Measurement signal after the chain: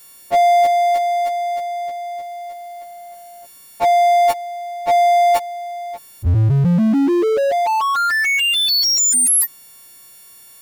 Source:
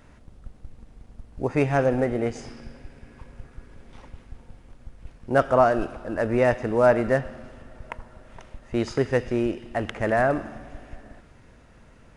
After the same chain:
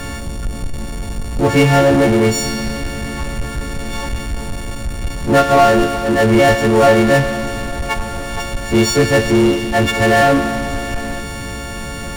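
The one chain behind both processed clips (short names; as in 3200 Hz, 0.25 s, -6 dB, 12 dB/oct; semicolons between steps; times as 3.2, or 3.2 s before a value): frequency quantiser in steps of 4 st; power-law curve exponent 0.5; low shelf 460 Hz +6 dB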